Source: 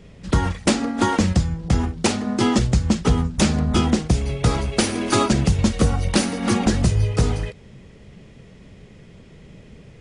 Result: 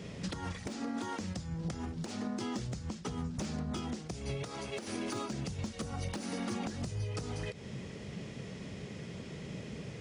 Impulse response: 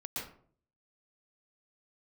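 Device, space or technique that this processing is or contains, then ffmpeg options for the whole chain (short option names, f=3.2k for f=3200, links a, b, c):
broadcast voice chain: -filter_complex "[0:a]highpass=99,deesser=0.55,acompressor=threshold=-34dB:ratio=5,equalizer=f=5.6k:t=o:w=0.83:g=4.5,alimiter=level_in=6dB:limit=-24dB:level=0:latency=1:release=248,volume=-6dB,asettb=1/sr,asplit=3[a][b][c];[a]atrim=end=4.434[d];[b]atrim=start=4.43:end=4.88,asetpts=PTS-STARTPTS,afade=t=in:d=0.004:c=qsin,afade=t=out:st=0.446:d=0.004:c=qsin,highpass=f=250:p=1[e];[c]atrim=start=4.876[f];[d][e]acrossfade=d=0.004:c1=hsin:c2=qsin[g];[g][f]acrossfade=d=0.004:c1=qsin:c2=hsin,volume=2.5dB"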